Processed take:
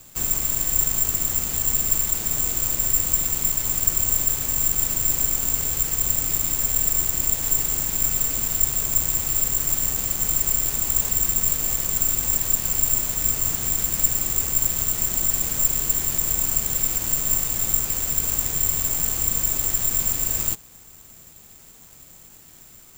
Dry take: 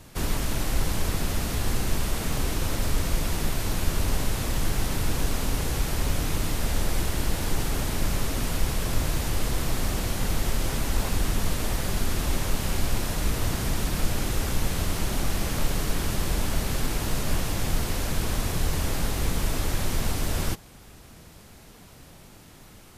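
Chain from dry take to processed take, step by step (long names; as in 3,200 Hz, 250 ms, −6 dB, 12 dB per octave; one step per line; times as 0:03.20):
bad sample-rate conversion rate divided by 6×, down none, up zero stuff
level −6.5 dB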